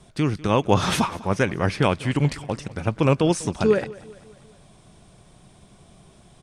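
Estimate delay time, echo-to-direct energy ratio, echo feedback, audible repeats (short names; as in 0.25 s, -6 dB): 0.198 s, -18.5 dB, 51%, 3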